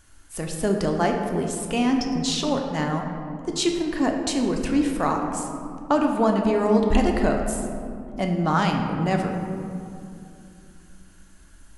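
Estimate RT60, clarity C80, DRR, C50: 2.6 s, 5.0 dB, 2.0 dB, 4.0 dB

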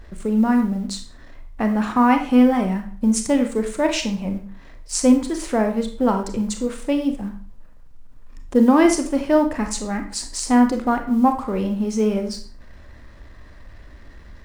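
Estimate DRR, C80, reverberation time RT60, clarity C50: 5.5 dB, 13.0 dB, 0.45 s, 9.0 dB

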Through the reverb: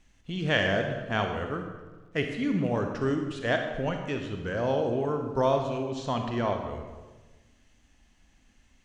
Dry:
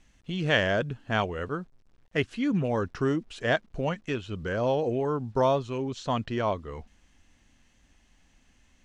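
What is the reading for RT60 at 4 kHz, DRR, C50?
1.0 s, 4.5 dB, 5.0 dB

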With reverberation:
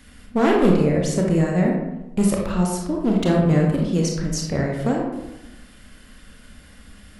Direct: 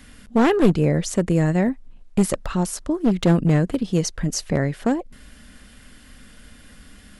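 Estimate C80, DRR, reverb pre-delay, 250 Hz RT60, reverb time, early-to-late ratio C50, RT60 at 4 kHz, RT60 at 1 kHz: 5.5 dB, −1.0 dB, 25 ms, 1.1 s, 0.95 s, 2.0 dB, 0.55 s, 0.95 s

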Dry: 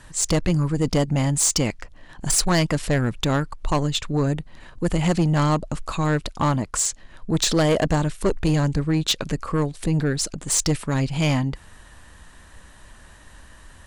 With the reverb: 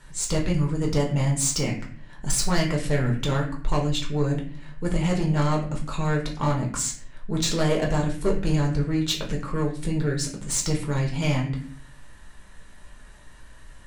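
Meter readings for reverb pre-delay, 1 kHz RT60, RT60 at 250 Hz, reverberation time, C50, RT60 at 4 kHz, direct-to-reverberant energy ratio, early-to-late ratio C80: 4 ms, 0.45 s, 0.75 s, 0.50 s, 8.0 dB, 0.40 s, −1.5 dB, 11.5 dB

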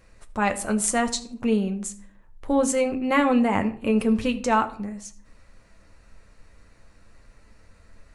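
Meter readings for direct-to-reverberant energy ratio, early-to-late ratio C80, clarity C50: 6.0 dB, 18.0 dB, 15.0 dB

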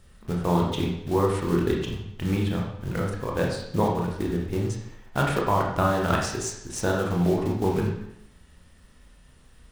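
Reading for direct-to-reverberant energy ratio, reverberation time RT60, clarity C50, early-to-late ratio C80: −1.0 dB, 0.75 s, 3.5 dB, 6.5 dB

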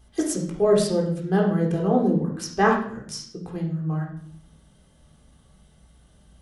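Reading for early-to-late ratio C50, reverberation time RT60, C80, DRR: 5.5 dB, 0.60 s, 9.5 dB, −1.0 dB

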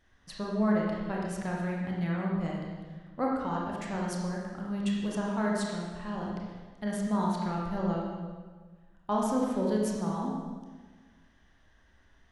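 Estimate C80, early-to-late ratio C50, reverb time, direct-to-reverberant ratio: 2.0 dB, 0.0 dB, 1.5 s, −3.0 dB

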